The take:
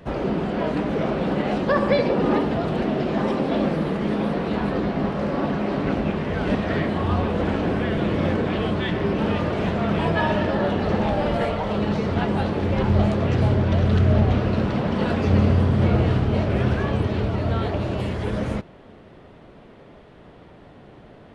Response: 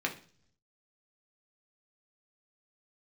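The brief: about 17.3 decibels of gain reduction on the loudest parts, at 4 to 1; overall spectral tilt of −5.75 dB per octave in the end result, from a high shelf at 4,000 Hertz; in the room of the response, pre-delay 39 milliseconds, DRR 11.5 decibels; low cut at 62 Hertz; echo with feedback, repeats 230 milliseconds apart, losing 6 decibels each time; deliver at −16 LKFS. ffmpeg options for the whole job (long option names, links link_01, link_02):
-filter_complex "[0:a]highpass=62,highshelf=frequency=4000:gain=8.5,acompressor=threshold=-36dB:ratio=4,aecho=1:1:230|460|690|920|1150|1380:0.501|0.251|0.125|0.0626|0.0313|0.0157,asplit=2[link_01][link_02];[1:a]atrim=start_sample=2205,adelay=39[link_03];[link_02][link_03]afir=irnorm=-1:irlink=0,volume=-18dB[link_04];[link_01][link_04]amix=inputs=2:normalize=0,volume=19.5dB"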